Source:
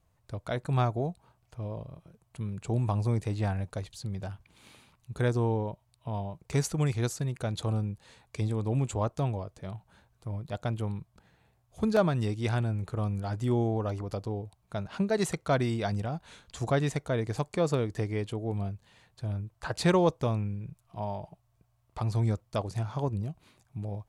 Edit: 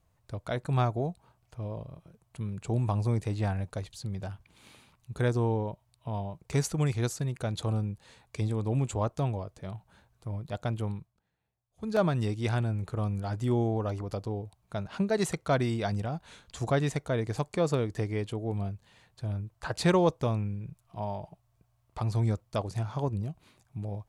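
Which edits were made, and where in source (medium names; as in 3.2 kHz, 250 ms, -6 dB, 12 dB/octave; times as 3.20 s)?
10.91–12.04 s: dip -17.5 dB, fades 0.26 s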